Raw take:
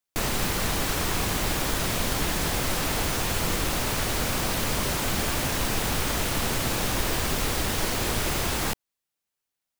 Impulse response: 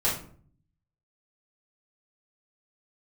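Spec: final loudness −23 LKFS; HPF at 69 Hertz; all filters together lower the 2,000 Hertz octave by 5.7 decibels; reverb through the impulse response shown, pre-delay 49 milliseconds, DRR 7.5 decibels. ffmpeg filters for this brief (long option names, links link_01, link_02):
-filter_complex "[0:a]highpass=69,equalizer=frequency=2000:width_type=o:gain=-7.5,asplit=2[link_01][link_02];[1:a]atrim=start_sample=2205,adelay=49[link_03];[link_02][link_03]afir=irnorm=-1:irlink=0,volume=-18.5dB[link_04];[link_01][link_04]amix=inputs=2:normalize=0,volume=3.5dB"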